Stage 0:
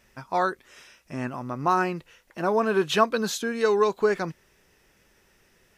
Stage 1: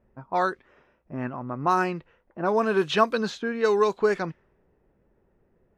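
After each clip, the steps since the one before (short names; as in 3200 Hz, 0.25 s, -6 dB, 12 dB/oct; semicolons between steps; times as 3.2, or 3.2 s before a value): low-pass opened by the level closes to 660 Hz, open at -17.5 dBFS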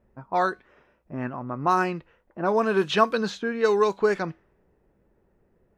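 resonator 65 Hz, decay 0.27 s, harmonics odd, mix 30%; gain +3 dB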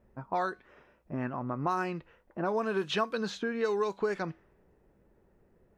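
compressor 2.5:1, threshold -31 dBFS, peak gain reduction 12 dB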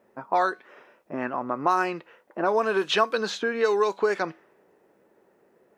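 HPF 340 Hz 12 dB/oct; gain +8.5 dB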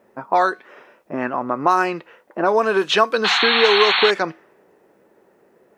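painted sound noise, 3.24–4.11, 700–4400 Hz -24 dBFS; gain +6 dB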